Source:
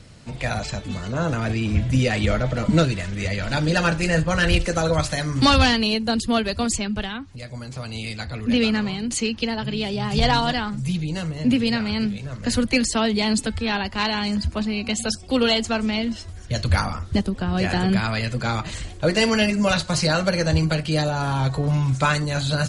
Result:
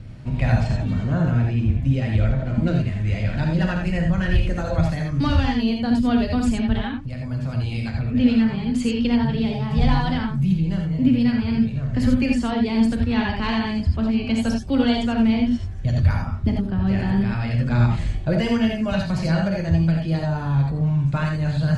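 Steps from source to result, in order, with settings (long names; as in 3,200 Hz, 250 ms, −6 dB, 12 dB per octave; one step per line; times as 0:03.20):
bass and treble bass +11 dB, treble −13 dB
speech leveller within 5 dB 0.5 s
reverb whose tail is shaped and stops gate 110 ms rising, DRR 1 dB
wrong playback speed 24 fps film run at 25 fps
level −7.5 dB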